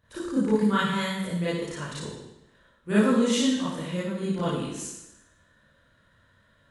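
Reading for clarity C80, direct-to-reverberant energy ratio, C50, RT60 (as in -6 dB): 3.5 dB, -11.5 dB, -2.5 dB, 0.95 s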